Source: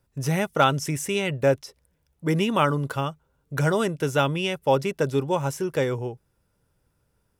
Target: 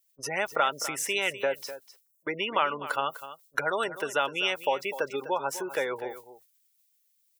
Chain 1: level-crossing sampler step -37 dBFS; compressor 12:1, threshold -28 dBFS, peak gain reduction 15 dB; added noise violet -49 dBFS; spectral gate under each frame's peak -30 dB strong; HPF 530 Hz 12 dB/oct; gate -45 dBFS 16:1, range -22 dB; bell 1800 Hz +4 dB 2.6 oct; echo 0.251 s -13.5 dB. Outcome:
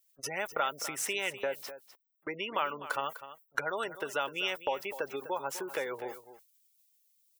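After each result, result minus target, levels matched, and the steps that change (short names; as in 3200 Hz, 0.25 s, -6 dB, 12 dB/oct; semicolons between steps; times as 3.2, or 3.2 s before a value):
level-crossing sampler: distortion +13 dB; compressor: peak gain reduction +6 dB
change: level-crossing sampler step -48.5 dBFS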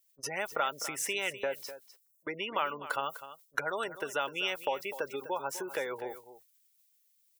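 compressor: peak gain reduction +6 dB
change: compressor 12:1, threshold -21.5 dBFS, peak gain reduction 9 dB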